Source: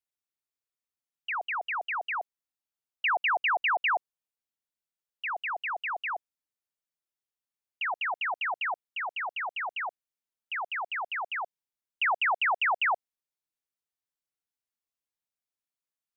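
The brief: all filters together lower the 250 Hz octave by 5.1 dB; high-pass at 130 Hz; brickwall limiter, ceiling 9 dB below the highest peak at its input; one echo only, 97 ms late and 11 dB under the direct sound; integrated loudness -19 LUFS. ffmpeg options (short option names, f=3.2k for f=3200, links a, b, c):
-af "highpass=130,equalizer=f=250:t=o:g=-8.5,alimiter=level_in=7dB:limit=-24dB:level=0:latency=1,volume=-7dB,aecho=1:1:97:0.282,volume=16.5dB"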